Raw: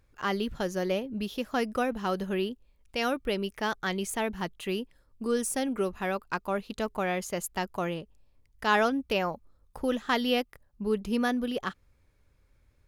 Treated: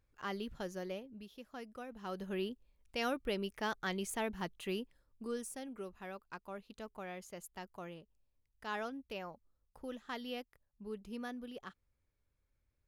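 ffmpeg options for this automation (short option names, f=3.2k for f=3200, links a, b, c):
-af "volume=1dB,afade=t=out:st=0.67:d=0.59:silence=0.398107,afade=t=in:st=1.88:d=0.63:silence=0.251189,afade=t=out:st=4.79:d=0.79:silence=0.354813"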